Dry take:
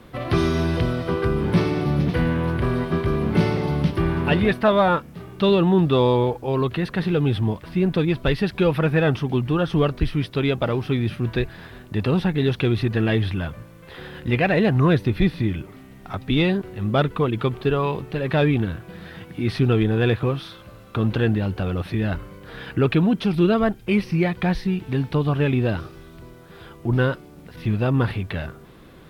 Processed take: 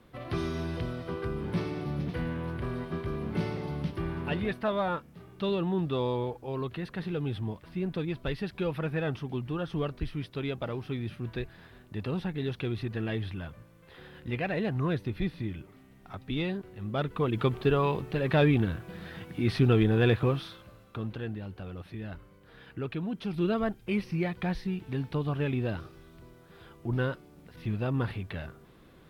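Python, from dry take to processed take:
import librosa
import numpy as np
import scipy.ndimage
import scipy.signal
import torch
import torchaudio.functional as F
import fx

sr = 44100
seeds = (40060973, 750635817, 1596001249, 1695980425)

y = fx.gain(x, sr, db=fx.line((16.94, -12.0), (17.42, -4.0), (20.37, -4.0), (21.18, -16.0), (23.0, -16.0), (23.5, -9.5)))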